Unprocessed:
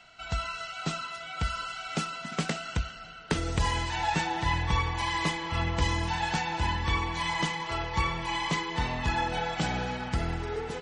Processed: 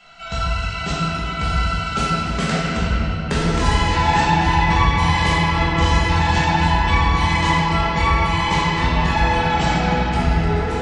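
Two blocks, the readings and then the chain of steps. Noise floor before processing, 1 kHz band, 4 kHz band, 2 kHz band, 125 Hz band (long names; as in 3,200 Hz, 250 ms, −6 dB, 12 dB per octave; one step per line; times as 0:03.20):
−45 dBFS, +12.5 dB, +9.5 dB, +11.0 dB, +13.0 dB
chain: rectangular room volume 180 cubic metres, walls hard, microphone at 1.3 metres
level +2 dB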